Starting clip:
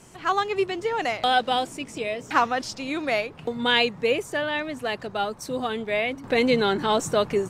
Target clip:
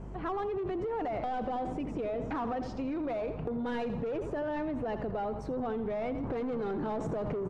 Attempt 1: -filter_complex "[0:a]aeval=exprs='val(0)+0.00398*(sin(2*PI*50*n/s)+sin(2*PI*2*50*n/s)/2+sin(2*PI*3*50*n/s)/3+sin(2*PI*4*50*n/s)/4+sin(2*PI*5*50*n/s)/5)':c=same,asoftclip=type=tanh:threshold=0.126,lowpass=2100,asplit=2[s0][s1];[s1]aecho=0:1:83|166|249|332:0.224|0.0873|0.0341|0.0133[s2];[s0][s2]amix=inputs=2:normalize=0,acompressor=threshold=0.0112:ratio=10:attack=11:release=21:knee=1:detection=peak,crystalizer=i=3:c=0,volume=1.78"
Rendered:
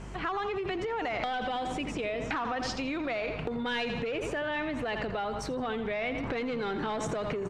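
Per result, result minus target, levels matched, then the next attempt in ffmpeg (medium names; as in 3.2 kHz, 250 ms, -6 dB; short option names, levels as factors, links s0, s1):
2 kHz band +10.0 dB; saturation: distortion -7 dB
-filter_complex "[0:a]aeval=exprs='val(0)+0.00398*(sin(2*PI*50*n/s)+sin(2*PI*2*50*n/s)/2+sin(2*PI*3*50*n/s)/3+sin(2*PI*4*50*n/s)/4+sin(2*PI*5*50*n/s)/5)':c=same,asoftclip=type=tanh:threshold=0.126,lowpass=790,asplit=2[s0][s1];[s1]aecho=0:1:83|166|249|332:0.224|0.0873|0.0341|0.0133[s2];[s0][s2]amix=inputs=2:normalize=0,acompressor=threshold=0.0112:ratio=10:attack=11:release=21:knee=1:detection=peak,crystalizer=i=3:c=0,volume=1.78"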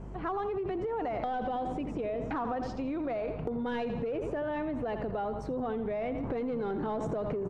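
saturation: distortion -7 dB
-filter_complex "[0:a]aeval=exprs='val(0)+0.00398*(sin(2*PI*50*n/s)+sin(2*PI*2*50*n/s)/2+sin(2*PI*3*50*n/s)/3+sin(2*PI*4*50*n/s)/4+sin(2*PI*5*50*n/s)/5)':c=same,asoftclip=type=tanh:threshold=0.0422,lowpass=790,asplit=2[s0][s1];[s1]aecho=0:1:83|166|249|332:0.224|0.0873|0.0341|0.0133[s2];[s0][s2]amix=inputs=2:normalize=0,acompressor=threshold=0.0112:ratio=10:attack=11:release=21:knee=1:detection=peak,crystalizer=i=3:c=0,volume=1.78"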